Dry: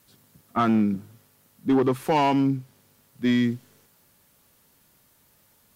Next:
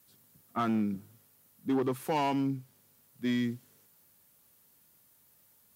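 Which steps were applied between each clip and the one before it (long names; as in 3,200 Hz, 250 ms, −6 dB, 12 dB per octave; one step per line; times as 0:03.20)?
high-pass filter 59 Hz
high-shelf EQ 8,500 Hz +9.5 dB
level −8.5 dB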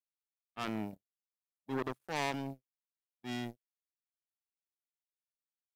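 power curve on the samples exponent 3
transient designer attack −7 dB, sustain +4 dB
level +3.5 dB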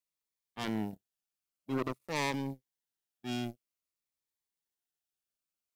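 phaser whose notches keep moving one way falling 0.51 Hz
level +4 dB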